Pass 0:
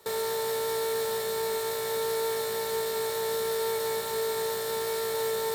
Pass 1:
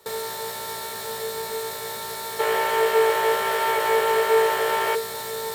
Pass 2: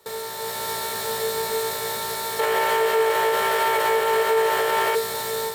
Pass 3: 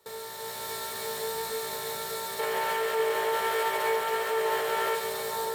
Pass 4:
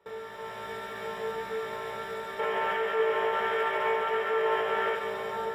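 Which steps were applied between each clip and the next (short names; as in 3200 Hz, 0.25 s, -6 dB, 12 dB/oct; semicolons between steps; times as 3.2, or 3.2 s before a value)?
spectral gain 2.4–4.95, 340–3400 Hz +12 dB; notches 50/100/150/200/250/300/350/400/450 Hz; gain +2 dB
AGC gain up to 6.5 dB; limiter -10 dBFS, peak gain reduction 7 dB; gain -2 dB
split-band echo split 1400 Hz, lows 0.6 s, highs 0.138 s, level -6 dB; gain -8 dB
polynomial smoothing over 25 samples; on a send at -6 dB: reverb RT60 0.50 s, pre-delay 5 ms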